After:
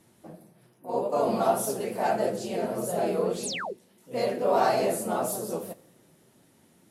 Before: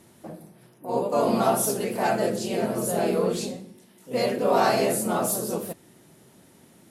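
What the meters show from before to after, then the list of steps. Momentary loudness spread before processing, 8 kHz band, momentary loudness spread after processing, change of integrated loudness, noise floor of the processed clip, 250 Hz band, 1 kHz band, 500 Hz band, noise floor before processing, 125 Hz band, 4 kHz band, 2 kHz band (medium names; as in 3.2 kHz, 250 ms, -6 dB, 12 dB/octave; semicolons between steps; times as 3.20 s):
18 LU, -5.5 dB, 13 LU, -3.0 dB, -62 dBFS, -5.5 dB, -2.0 dB, -2.0 dB, -55 dBFS, -5.5 dB, -4.0 dB, -4.0 dB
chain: dynamic bell 660 Hz, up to +5 dB, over -36 dBFS, Q 0.98; Schroeder reverb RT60 1.3 s, combs from 26 ms, DRR 20 dB; painted sound fall, 3.43–3.73 s, 340–12000 Hz -27 dBFS; flange 1.7 Hz, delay 5.9 ms, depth 6.8 ms, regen -38%; trim -2.5 dB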